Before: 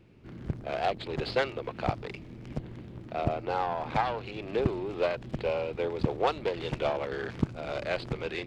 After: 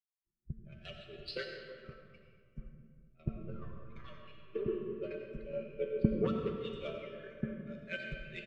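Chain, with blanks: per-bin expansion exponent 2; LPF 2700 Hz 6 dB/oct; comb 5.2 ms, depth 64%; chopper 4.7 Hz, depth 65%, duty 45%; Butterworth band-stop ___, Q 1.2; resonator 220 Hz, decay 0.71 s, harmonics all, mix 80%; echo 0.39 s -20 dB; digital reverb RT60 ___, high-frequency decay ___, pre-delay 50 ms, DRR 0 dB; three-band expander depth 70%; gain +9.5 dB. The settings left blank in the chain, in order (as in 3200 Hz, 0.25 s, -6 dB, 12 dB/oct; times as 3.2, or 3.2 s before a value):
810 Hz, 3.4 s, 0.55×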